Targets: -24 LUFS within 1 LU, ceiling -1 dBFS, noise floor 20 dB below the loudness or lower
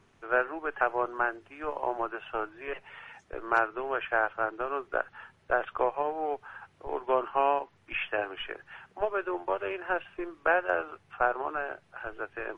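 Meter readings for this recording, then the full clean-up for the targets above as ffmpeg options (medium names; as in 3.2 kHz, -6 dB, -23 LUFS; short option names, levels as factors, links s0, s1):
loudness -31.5 LUFS; peak level -11.5 dBFS; loudness target -24.0 LUFS
-> -af "volume=2.37"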